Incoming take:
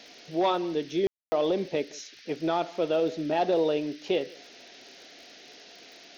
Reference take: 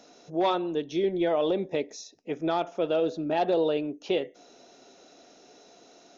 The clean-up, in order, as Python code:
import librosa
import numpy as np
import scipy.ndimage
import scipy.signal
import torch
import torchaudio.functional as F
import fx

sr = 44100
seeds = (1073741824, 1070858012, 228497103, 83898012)

y = fx.fix_declick_ar(x, sr, threshold=6.5)
y = fx.fix_ambience(y, sr, seeds[0], print_start_s=5.64, print_end_s=6.14, start_s=1.07, end_s=1.32)
y = fx.noise_reduce(y, sr, print_start_s=5.64, print_end_s=6.14, reduce_db=6.0)
y = fx.fix_echo_inverse(y, sr, delay_ms=167, level_db=-23.5)